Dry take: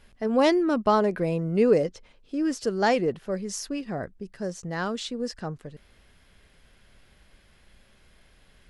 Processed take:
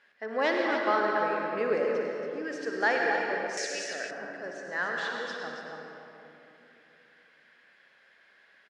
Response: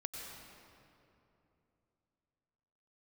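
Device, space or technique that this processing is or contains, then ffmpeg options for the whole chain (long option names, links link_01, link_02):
station announcement: -filter_complex "[0:a]highpass=440,lowpass=4800,equalizer=frequency=1700:width_type=o:width=0.53:gain=12,aecho=1:1:58.31|279.9:0.316|0.398[link_01];[1:a]atrim=start_sample=2205[link_02];[link_01][link_02]afir=irnorm=-1:irlink=0,asettb=1/sr,asplit=3[link_03][link_04][link_05];[link_03]atrim=end=3.574[link_06];[link_04]atrim=start=3.57:end=4.11,asetpts=PTS-STARTPTS,afade=type=in:duration=0.004:curve=qsin,afade=type=out:start_time=0.536:duration=0.004:curve=qsin,equalizer=frequency=125:width_type=o:width=1:gain=-6,equalizer=frequency=250:width_type=o:width=1:gain=-8,equalizer=frequency=500:width_type=o:width=1:gain=5,equalizer=frequency=1000:width_type=o:width=1:gain=-11,equalizer=frequency=2000:width_type=o:width=1:gain=6,equalizer=frequency=4000:width_type=o:width=1:gain=8,equalizer=frequency=8000:width_type=o:width=1:gain=11[link_07];[link_05]atrim=start=4.106[link_08];[link_06][link_07]acrossfade=duration=0.004:curve1=hsin:curve2=qsin[link_09];[link_09][link_08]acrossfade=duration=0.004:curve1=qsin:curve2=hsin,volume=-3dB"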